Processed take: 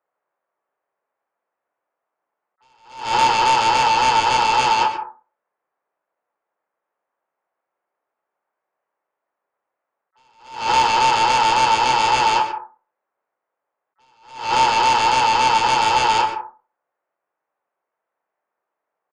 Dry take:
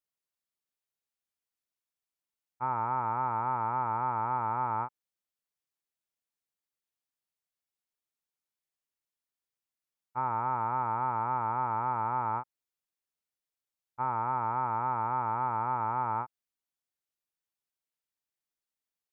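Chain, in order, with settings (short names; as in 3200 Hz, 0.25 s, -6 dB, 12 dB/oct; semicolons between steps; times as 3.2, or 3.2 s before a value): Wiener smoothing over 9 samples; HPF 93 Hz 24 dB/oct; bell 500 Hz +15 dB 2.8 oct; harmoniser +7 st -17 dB; three-band isolator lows -16 dB, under 600 Hz, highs -21 dB, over 2100 Hz; in parallel at -7 dB: sine folder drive 15 dB, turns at -11 dBFS; on the sum: doubler 30 ms -9 dB; on a send at -7.5 dB: reverb RT60 0.35 s, pre-delay 0.109 s; on the sum: attack slew limiter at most 110 dB/s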